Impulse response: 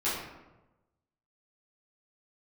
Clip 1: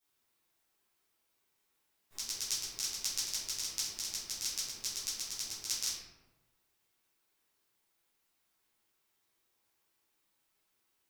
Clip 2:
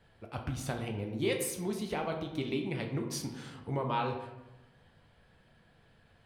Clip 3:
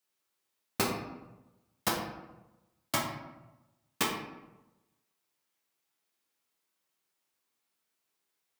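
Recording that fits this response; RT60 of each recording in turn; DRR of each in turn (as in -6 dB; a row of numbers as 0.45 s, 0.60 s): 1; 1.1 s, 1.1 s, 1.1 s; -12.5 dB, 2.0 dB, -3.0 dB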